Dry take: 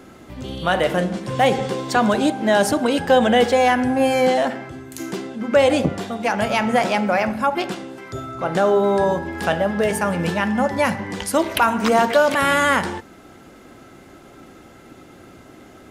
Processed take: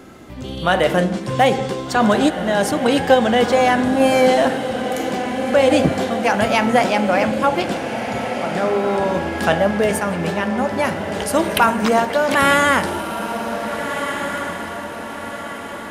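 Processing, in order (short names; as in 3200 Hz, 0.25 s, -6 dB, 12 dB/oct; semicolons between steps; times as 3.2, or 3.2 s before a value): random-step tremolo 3.5 Hz; diffused feedback echo 1.614 s, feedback 51%, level -8 dB; gain +3.5 dB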